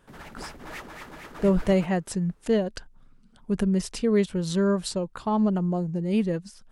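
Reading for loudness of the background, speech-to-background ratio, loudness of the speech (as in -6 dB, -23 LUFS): -42.0 LUFS, 16.5 dB, -25.5 LUFS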